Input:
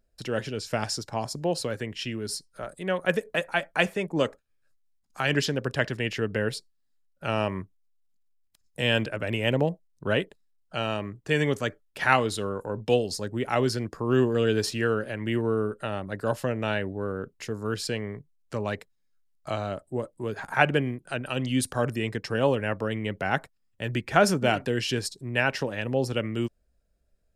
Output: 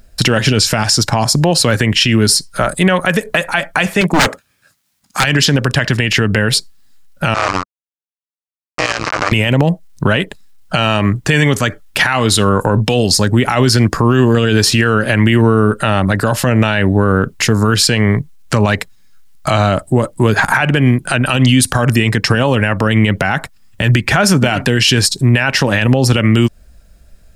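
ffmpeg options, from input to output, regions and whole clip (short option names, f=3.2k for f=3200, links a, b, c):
-filter_complex "[0:a]asettb=1/sr,asplit=3[a][b][c];[a]atrim=end=4.014[d];[b]atrim=start=4.01:end=5.24,asetpts=PTS-STARTPTS,afade=t=in:d=0.004:c=qsin,afade=t=out:st=1.226:d=0.004:c=qsin,highpass=120,aeval=exprs='0.0531*(abs(mod(val(0)/0.0531+3,4)-2)-1)':c=same[e];[c]atrim=start=5.236[f];[d][e]acrossfade=d=0.004:c1=hsin:c2=qsin[g];[g][f]acrossfade=d=0.004:c1=qsin:c2=hsin,asettb=1/sr,asplit=3[h][i][j];[h]atrim=end=7.344[k];[i]atrim=start=7.34:end=9.32,asetpts=PTS-STARTPTS,afade=t=in:d=0.004:c=qsin,afade=t=out:st=1.976:d=0.004:c=qsin,acrusher=bits=3:dc=4:mix=0:aa=0.000001,highpass=210,equalizer=f=210:t=q:w=4:g=-10,equalizer=f=520:t=q:w=4:g=3,equalizer=f=1.2k:t=q:w=4:g=10,equalizer=f=3.4k:t=q:w=4:g=-7,lowpass=f=6.4k:w=0.5412,lowpass=f=6.4k:w=1.3066,tremolo=f=180:d=0.919[l];[j]atrim=start=9.316[m];[k][l]acrossfade=d=0.004:c1=hsin:c2=qsin[n];[n][m]acrossfade=d=0.004:c1=qsin:c2=hsin,equalizer=f=450:w=1.1:g=-8,acompressor=threshold=-33dB:ratio=3,alimiter=level_in=28.5dB:limit=-1dB:release=50:level=0:latency=1,volume=-1dB"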